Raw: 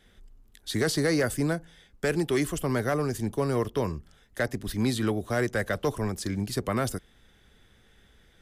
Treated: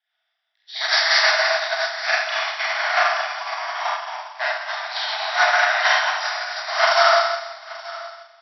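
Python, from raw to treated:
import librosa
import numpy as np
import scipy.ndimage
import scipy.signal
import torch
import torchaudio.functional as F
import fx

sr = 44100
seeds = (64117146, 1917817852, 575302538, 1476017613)

p1 = fx.reverse_delay_fb(x, sr, ms=147, feedback_pct=49, wet_db=-1.5)
p2 = fx.hpss(p1, sr, part='percussive', gain_db=8)
p3 = fx.rotary_switch(p2, sr, hz=6.0, then_hz=0.9, switch_at_s=4.87)
p4 = 10.0 ** (-19.5 / 20.0) * np.tanh(p3 / 10.0 ** (-19.5 / 20.0))
p5 = fx.brickwall_bandpass(p4, sr, low_hz=620.0, high_hz=5800.0)
p6 = p5 + fx.echo_feedback(p5, sr, ms=878, feedback_pct=27, wet_db=-7, dry=0)
p7 = fx.rev_schroeder(p6, sr, rt60_s=1.9, comb_ms=26, drr_db=-7.5)
p8 = fx.upward_expand(p7, sr, threshold_db=-40.0, expansion=2.5)
y = p8 * 10.0 ** (9.0 / 20.0)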